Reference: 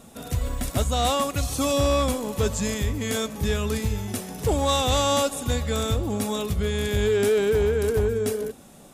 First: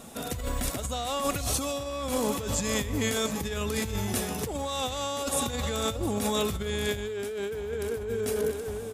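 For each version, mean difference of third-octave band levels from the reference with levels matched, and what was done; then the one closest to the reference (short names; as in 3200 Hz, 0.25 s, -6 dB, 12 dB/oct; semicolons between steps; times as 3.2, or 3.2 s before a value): 6.0 dB: echo 0.709 s -14.5 dB; negative-ratio compressor -28 dBFS, ratio -1; low shelf 240 Hz -5.5 dB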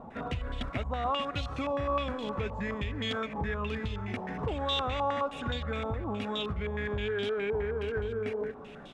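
9.0 dB: compressor 5:1, threshold -32 dBFS, peak gain reduction 12.5 dB; speakerphone echo 0.29 s, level -15 dB; stepped low-pass 9.6 Hz 920–3300 Hz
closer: first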